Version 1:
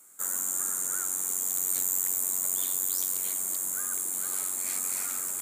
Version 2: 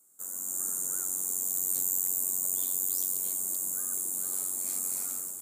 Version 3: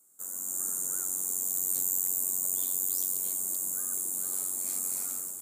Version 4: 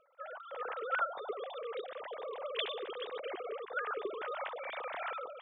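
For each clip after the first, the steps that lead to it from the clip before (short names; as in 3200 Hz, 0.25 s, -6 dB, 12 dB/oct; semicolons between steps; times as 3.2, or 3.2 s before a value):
bell 2000 Hz -14 dB 2.1 oct; AGC gain up to 7 dB; gain -6.5 dB
nothing audible
sine-wave speech; gain -8 dB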